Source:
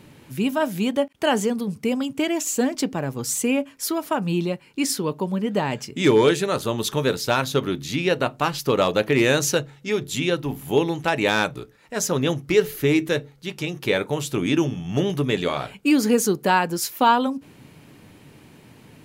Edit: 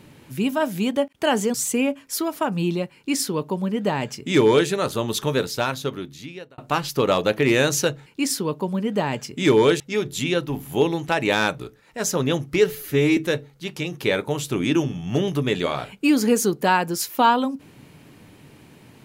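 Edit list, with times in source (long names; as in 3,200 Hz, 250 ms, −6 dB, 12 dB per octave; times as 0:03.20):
0:01.54–0:03.24: remove
0:04.65–0:06.39: duplicate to 0:09.76
0:07.00–0:08.28: fade out linear
0:12.71–0:12.99: time-stretch 1.5×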